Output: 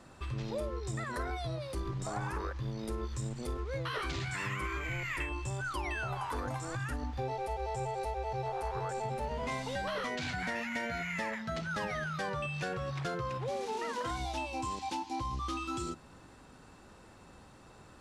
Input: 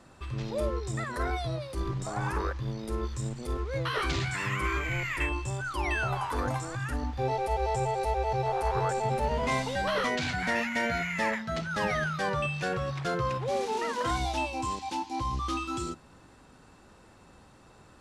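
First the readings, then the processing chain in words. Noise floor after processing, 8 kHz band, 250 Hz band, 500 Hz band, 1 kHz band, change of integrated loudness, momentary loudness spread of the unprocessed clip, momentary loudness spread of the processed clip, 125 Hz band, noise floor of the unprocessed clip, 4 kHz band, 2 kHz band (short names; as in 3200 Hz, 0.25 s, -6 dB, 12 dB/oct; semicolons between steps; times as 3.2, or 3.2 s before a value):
-56 dBFS, -4.5 dB, -5.5 dB, -6.5 dB, -6.0 dB, -6.0 dB, 6 LU, 9 LU, -5.0 dB, -56 dBFS, -5.5 dB, -6.0 dB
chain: compressor, threshold -33 dBFS, peak gain reduction 9 dB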